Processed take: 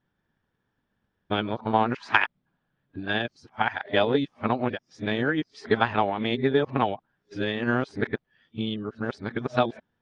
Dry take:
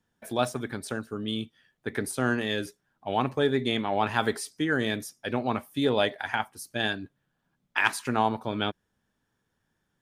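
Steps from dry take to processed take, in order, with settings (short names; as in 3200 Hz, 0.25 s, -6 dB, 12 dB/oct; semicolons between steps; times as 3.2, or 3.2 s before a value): whole clip reversed; transient shaper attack +6 dB, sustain +1 dB; Bessel low-pass 3300 Hz, order 6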